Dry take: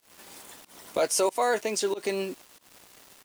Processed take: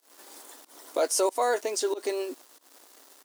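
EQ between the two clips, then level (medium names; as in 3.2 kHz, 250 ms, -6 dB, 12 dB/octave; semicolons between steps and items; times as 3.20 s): brick-wall FIR high-pass 240 Hz; peaking EQ 2.5 kHz -6.5 dB 0.88 oct; 0.0 dB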